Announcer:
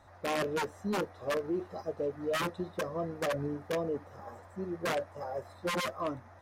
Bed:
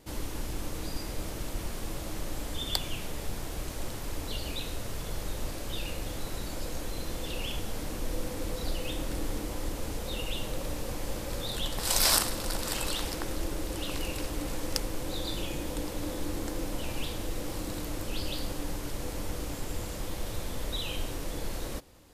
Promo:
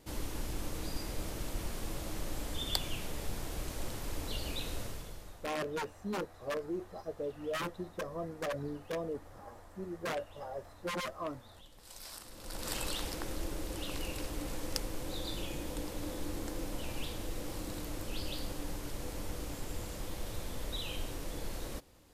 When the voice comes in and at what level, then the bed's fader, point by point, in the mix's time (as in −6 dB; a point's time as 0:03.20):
5.20 s, −4.5 dB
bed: 0:04.82 −3 dB
0:05.61 −24.5 dB
0:12.15 −24.5 dB
0:12.68 −5 dB